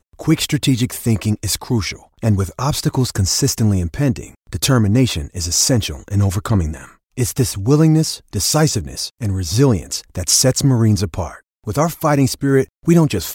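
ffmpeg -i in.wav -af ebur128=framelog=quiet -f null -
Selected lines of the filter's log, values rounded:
Integrated loudness:
  I:         -17.1 LUFS
  Threshold: -27.2 LUFS
Loudness range:
  LRA:         2.4 LU
  Threshold: -37.3 LUFS
  LRA low:   -18.5 LUFS
  LRA high:  -16.1 LUFS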